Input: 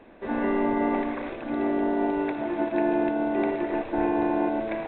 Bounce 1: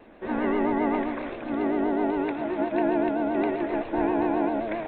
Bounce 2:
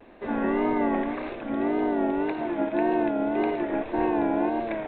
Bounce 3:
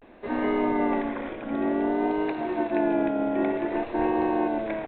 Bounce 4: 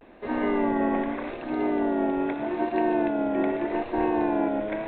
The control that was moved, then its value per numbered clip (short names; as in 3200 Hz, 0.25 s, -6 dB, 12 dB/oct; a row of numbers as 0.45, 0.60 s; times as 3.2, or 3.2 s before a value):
vibrato, rate: 7.6, 1.8, 0.54, 0.82 Hz